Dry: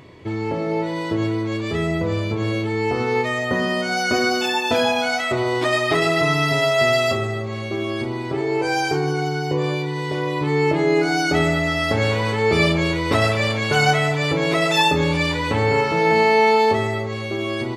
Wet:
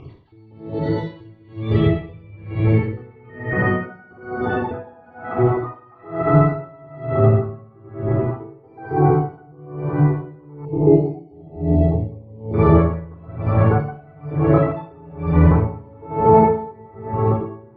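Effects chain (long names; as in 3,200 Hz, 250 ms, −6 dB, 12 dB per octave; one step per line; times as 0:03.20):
time-frequency cells dropped at random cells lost 36%
spectral tilt −3 dB per octave
on a send: feedback delay with all-pass diffusion 1,224 ms, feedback 44%, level −16 dB
on the sum: rectangular room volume 2,400 cubic metres, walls mixed, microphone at 3.7 metres
low-pass filter sweep 4,000 Hz → 1,200 Hz, 0:01.03–0:04.62
0:10.65–0:12.54: Butterworth band-reject 1,500 Hz, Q 0.59
tremolo with a sine in dB 1.1 Hz, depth 31 dB
level −4 dB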